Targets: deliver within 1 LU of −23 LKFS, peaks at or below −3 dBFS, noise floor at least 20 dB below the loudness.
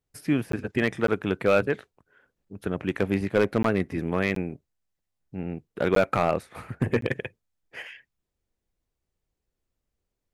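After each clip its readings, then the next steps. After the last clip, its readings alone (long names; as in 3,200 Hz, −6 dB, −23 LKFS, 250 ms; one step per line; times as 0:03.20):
share of clipped samples 0.3%; peaks flattened at −13.0 dBFS; number of dropouts 6; longest dropout 13 ms; integrated loudness −27.0 LKFS; sample peak −13.0 dBFS; target loudness −23.0 LKFS
→ clipped peaks rebuilt −13 dBFS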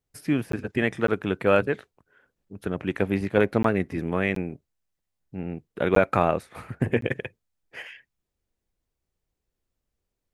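share of clipped samples 0.0%; number of dropouts 6; longest dropout 13 ms
→ repair the gap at 0:00.52/0:01.07/0:03.63/0:04.35/0:05.95/0:07.01, 13 ms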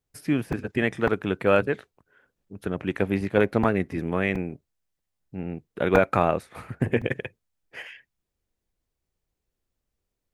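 number of dropouts 0; integrated loudness −25.5 LKFS; sample peak −4.0 dBFS; target loudness −23.0 LKFS
→ level +2.5 dB
brickwall limiter −3 dBFS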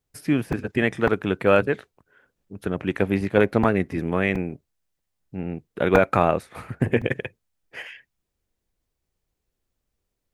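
integrated loudness −23.5 LKFS; sample peak −3.0 dBFS; background noise floor −80 dBFS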